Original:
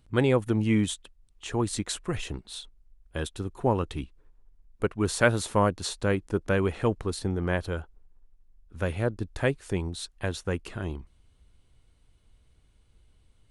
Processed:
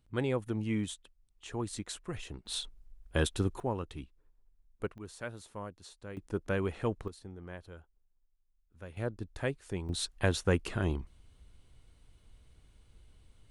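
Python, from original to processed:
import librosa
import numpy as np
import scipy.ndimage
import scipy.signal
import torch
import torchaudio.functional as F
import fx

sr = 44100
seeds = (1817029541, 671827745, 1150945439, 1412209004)

y = fx.gain(x, sr, db=fx.steps((0.0, -9.0), (2.46, 3.0), (3.6, -9.5), (4.98, -19.5), (6.17, -7.0), (7.08, -18.0), (8.97, -8.0), (9.89, 2.0)))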